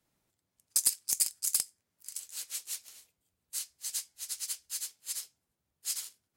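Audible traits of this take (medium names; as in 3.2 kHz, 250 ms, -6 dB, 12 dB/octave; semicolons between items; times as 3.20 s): noise floor -85 dBFS; spectral tilt +3.0 dB/octave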